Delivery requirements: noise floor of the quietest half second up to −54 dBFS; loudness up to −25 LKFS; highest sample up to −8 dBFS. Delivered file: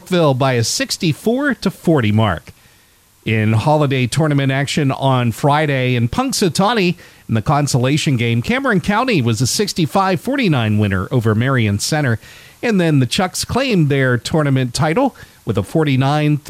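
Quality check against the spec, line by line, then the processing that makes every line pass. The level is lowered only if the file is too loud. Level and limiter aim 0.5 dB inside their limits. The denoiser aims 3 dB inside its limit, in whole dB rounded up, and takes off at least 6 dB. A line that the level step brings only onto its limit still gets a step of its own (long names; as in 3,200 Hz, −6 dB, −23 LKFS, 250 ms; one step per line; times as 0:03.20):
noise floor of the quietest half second −51 dBFS: out of spec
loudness −16.0 LKFS: out of spec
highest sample −4.0 dBFS: out of spec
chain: level −9.5 dB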